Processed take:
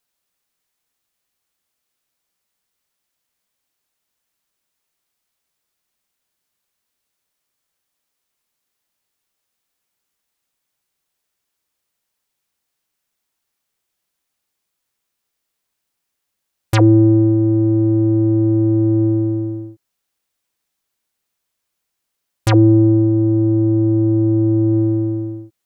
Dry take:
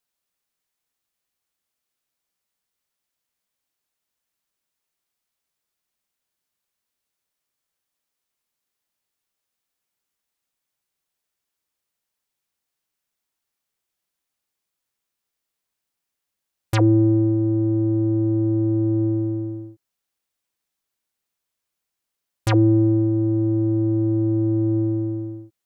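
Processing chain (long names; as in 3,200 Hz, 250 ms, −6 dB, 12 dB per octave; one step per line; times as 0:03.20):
0:22.50–0:24.73: high-shelf EQ 2,500 Hz −8 dB
level +5.5 dB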